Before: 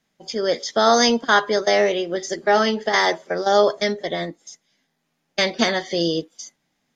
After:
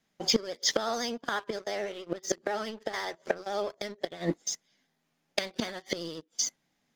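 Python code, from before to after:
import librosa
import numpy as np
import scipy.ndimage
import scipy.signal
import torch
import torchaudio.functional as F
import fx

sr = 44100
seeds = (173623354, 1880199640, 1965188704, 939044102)

y = fx.gate_flip(x, sr, shuts_db=-16.0, range_db=-24)
y = fx.vibrato(y, sr, rate_hz=14.0, depth_cents=48.0)
y = fx.leveller(y, sr, passes=2)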